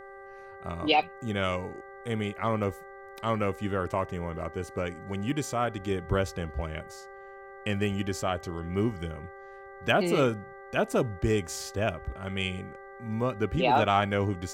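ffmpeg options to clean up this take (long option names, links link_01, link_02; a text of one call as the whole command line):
ffmpeg -i in.wav -af "bandreject=frequency=392.5:width_type=h:width=4,bandreject=frequency=785:width_type=h:width=4,bandreject=frequency=1177.5:width_type=h:width=4,bandreject=frequency=1570:width_type=h:width=4,bandreject=frequency=1962.5:width_type=h:width=4,bandreject=frequency=550:width=30,agate=range=-21dB:threshold=-38dB" out.wav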